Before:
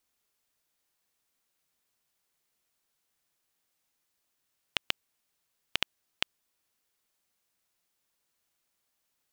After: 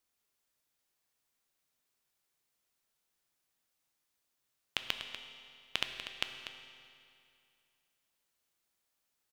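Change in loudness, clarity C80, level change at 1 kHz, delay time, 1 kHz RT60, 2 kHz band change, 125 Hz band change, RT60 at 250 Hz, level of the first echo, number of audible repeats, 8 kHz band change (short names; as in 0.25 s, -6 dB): -4.0 dB, 6.5 dB, -3.0 dB, 0.243 s, 2.5 s, -3.0 dB, -3.0 dB, 2.5 s, -10.5 dB, 1, -3.0 dB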